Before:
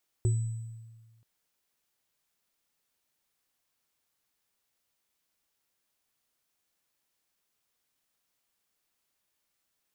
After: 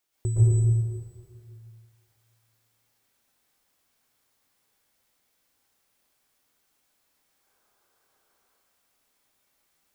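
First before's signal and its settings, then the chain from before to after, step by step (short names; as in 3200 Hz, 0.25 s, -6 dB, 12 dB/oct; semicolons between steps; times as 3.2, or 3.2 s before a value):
sine partials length 0.98 s, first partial 113 Hz, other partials 367/7950 Hz, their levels -9/-19 dB, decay 1.45 s, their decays 0.21/1.08 s, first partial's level -21 dB
spectral gain 7.28–8.4, 310–1700 Hz +7 dB; plate-style reverb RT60 2 s, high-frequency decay 0.55×, pre-delay 0.105 s, DRR -8.5 dB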